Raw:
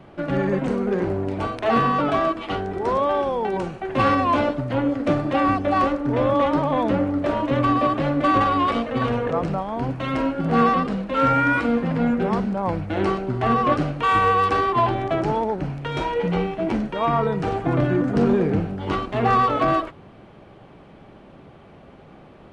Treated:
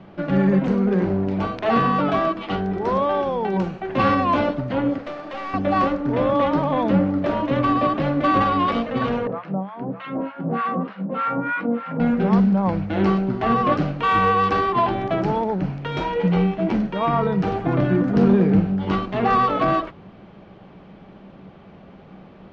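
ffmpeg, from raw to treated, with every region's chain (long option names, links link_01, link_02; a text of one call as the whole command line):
ffmpeg -i in.wav -filter_complex "[0:a]asettb=1/sr,asplit=3[link_01][link_02][link_03];[link_01]atrim=end=4.984[link_04];[link_02]atrim=start=4.98:end=5.54,asetpts=PTS-STARTPTS,afade=type=in:duration=0.004:curve=qsin,afade=type=out:start_time=0.556:duration=0.004:curve=qsin,highpass=510,acompressor=threshold=-30dB:ratio=2:attack=3.2:release=140:knee=1:detection=peak,aeval=exprs='clip(val(0),-1,0.0211)':channel_layout=same[link_05];[link_03]atrim=start=5.536[link_06];[link_04][link_05]acrossfade=duration=0.004:curve1=hsin:curve2=qsin[link_07];[link_07][link_06]acrossfade=duration=0.004:curve1=qsin:curve2=hsin,asettb=1/sr,asplit=3[link_08][link_09][link_10];[link_08]atrim=end=9.274[link_11];[link_09]atrim=start=9.27:end=12,asetpts=PTS-STARTPTS,afade=type=in:duration=0.004:curve=qsin,afade=type=out:start_time=2.726:duration=0.004:curve=qsin,acrossover=split=920[link_12][link_13];[link_12]aeval=exprs='val(0)*(1-1/2+1/2*cos(2*PI*3.3*n/s))':channel_layout=same[link_14];[link_13]aeval=exprs='val(0)*(1-1/2-1/2*cos(2*PI*3.3*n/s))':channel_layout=same[link_15];[link_14][link_15]amix=inputs=2:normalize=0,highpass=180,lowpass=2400,aecho=1:1:606:0.282,atrim=end_sample=120393[link_16];[link_10]atrim=start=11.996[link_17];[link_11][link_16]acrossfade=duration=0.004:curve1=hsin:curve2=qsin[link_18];[link_18][link_17]acrossfade=duration=0.004:curve1=qsin:curve2=hsin,lowpass=frequency=5900:width=0.5412,lowpass=frequency=5900:width=1.3066,equalizer=frequency=190:width=7.4:gain=11,bandreject=frequency=60:width_type=h:width=6,bandreject=frequency=120:width_type=h:width=6" out.wav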